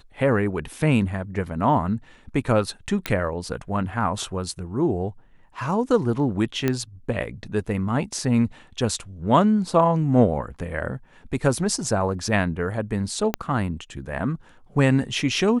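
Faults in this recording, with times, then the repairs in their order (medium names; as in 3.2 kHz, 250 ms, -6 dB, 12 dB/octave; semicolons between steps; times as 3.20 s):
3.06 s: pop -9 dBFS
6.68 s: pop -9 dBFS
13.34 s: pop -8 dBFS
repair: de-click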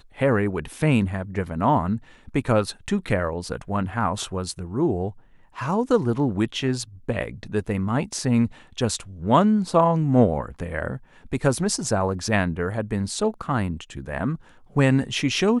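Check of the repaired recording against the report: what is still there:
6.68 s: pop
13.34 s: pop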